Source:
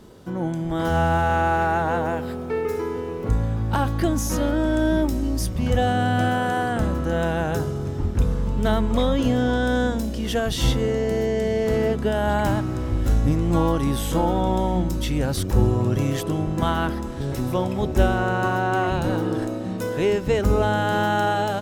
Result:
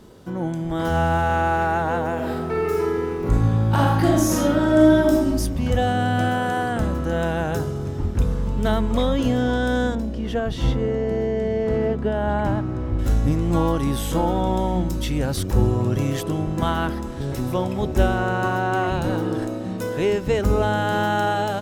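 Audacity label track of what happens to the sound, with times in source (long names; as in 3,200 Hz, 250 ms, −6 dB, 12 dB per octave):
2.140000	5.270000	thrown reverb, RT60 0.98 s, DRR −3 dB
9.950000	12.990000	low-pass filter 1,500 Hz 6 dB per octave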